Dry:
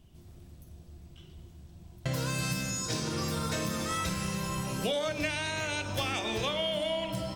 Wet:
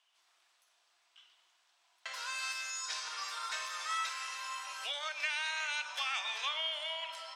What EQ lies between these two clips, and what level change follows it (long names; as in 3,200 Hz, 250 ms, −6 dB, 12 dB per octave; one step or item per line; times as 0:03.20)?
high-pass filter 1,000 Hz 24 dB per octave
high-frequency loss of the air 69 metres
0.0 dB